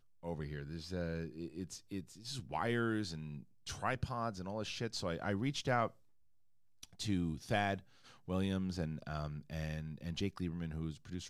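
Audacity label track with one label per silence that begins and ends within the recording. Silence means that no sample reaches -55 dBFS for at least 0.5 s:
5.930000	6.830000	silence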